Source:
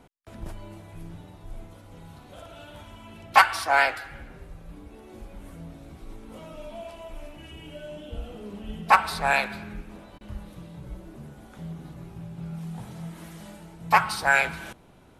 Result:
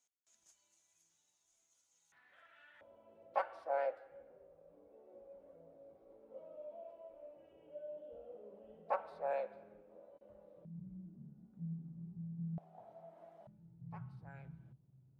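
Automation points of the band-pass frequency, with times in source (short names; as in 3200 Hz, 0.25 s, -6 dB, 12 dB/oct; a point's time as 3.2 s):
band-pass, Q 9.2
6600 Hz
from 2.12 s 1800 Hz
from 2.81 s 540 Hz
from 10.65 s 180 Hz
from 12.58 s 670 Hz
from 13.47 s 130 Hz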